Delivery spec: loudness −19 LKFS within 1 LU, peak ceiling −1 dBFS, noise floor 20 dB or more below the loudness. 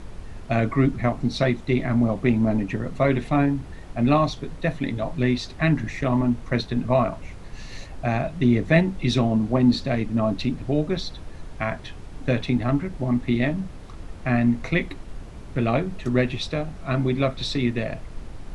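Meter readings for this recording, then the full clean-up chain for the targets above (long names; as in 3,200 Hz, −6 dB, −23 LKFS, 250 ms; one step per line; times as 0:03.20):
background noise floor −40 dBFS; target noise floor −44 dBFS; integrated loudness −23.5 LKFS; sample peak −4.0 dBFS; target loudness −19.0 LKFS
→ noise reduction from a noise print 6 dB
level +4.5 dB
brickwall limiter −1 dBFS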